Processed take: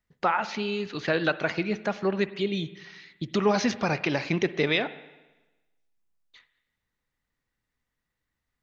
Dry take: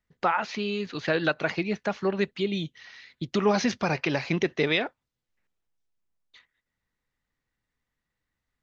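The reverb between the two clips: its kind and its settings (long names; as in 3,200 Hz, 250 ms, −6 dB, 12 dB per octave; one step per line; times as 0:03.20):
spring reverb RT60 1.1 s, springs 47/56 ms, chirp 50 ms, DRR 14.5 dB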